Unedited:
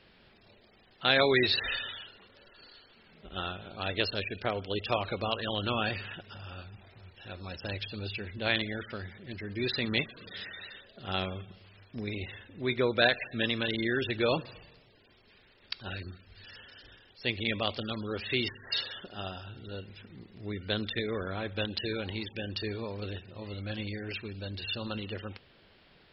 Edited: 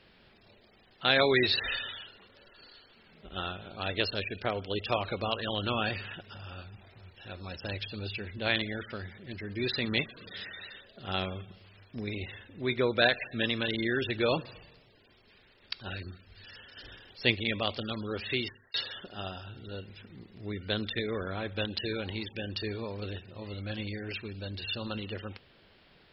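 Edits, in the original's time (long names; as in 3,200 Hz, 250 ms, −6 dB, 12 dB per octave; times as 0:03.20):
0:16.77–0:17.35: clip gain +5.5 dB
0:18.30–0:18.74: fade out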